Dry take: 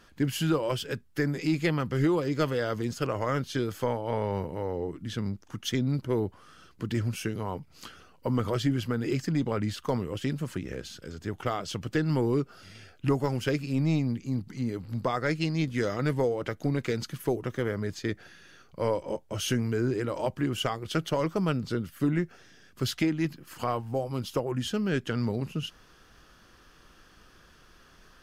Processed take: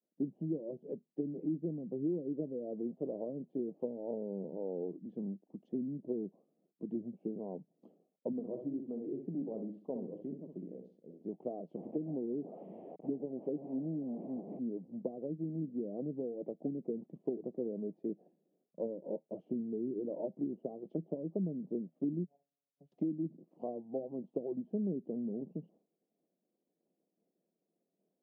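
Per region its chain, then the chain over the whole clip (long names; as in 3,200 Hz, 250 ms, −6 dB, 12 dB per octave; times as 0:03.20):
0:08.32–0:11.23: repeating echo 63 ms, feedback 32%, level −7 dB + flanger 1.9 Hz, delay 3.1 ms, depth 3.9 ms, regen −77%
0:11.77–0:14.59: linear delta modulator 16 kbit/s, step −27.5 dBFS + parametric band 110 Hz −4.5 dB 2.4 octaves + one half of a high-frequency compander decoder only
0:22.24–0:22.92: phases set to zero 141 Hz + downward compressor, threshold −39 dBFS + phaser with its sweep stopped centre 1,300 Hz, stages 6
whole clip: treble cut that deepens with the level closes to 310 Hz, closed at −23.5 dBFS; downward expander −45 dBFS; elliptic band-pass filter 180–680 Hz, stop band 40 dB; level −5 dB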